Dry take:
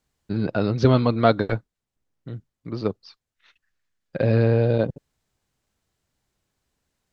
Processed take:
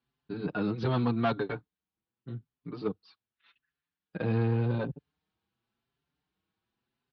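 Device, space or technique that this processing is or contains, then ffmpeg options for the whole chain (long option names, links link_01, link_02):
barber-pole flanger into a guitar amplifier: -filter_complex "[0:a]asplit=2[link_01][link_02];[link_02]adelay=5.5,afreqshift=0.87[link_03];[link_01][link_03]amix=inputs=2:normalize=1,asoftclip=type=tanh:threshold=-17.5dB,highpass=87,equalizer=frequency=96:width_type=q:width=4:gain=-7,equalizer=frequency=580:width_type=q:width=4:gain=-10,equalizer=frequency=2000:width_type=q:width=4:gain=-5,lowpass=frequency=3900:width=0.5412,lowpass=frequency=3900:width=1.3066,volume=-1.5dB"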